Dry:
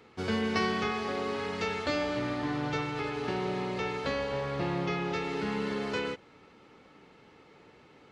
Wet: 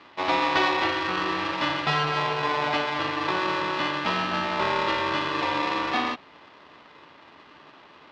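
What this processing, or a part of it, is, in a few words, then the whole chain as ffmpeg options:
ring modulator pedal into a guitar cabinet: -af "aeval=exprs='val(0)*sgn(sin(2*PI*740*n/s))':channel_layout=same,highpass=87,equalizer=frequency=110:width_type=q:width=4:gain=-7,equalizer=frequency=190:width_type=q:width=4:gain=-4,equalizer=frequency=510:width_type=q:width=4:gain=-6,equalizer=frequency=750:width_type=q:width=4:gain=8,lowpass=frequency=4300:width=0.5412,lowpass=frequency=4300:width=1.3066,volume=6.5dB"

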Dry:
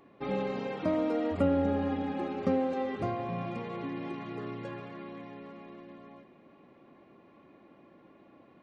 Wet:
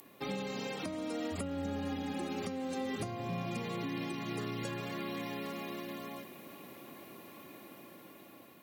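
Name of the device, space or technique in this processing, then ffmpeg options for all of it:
FM broadcast chain: -filter_complex "[0:a]highpass=70,dynaudnorm=framelen=840:gausssize=5:maxgain=7.5dB,acrossover=split=260|730[link_01][link_02][link_03];[link_01]acompressor=threshold=-32dB:ratio=4[link_04];[link_02]acompressor=threshold=-40dB:ratio=4[link_05];[link_03]acompressor=threshold=-44dB:ratio=4[link_06];[link_04][link_05][link_06]amix=inputs=3:normalize=0,aemphasis=mode=production:type=75fm,alimiter=level_in=3.5dB:limit=-24dB:level=0:latency=1:release=499,volume=-3.5dB,asoftclip=type=hard:threshold=-28.5dB,lowpass=frequency=15000:width=0.5412,lowpass=frequency=15000:width=1.3066,aemphasis=mode=production:type=75fm"

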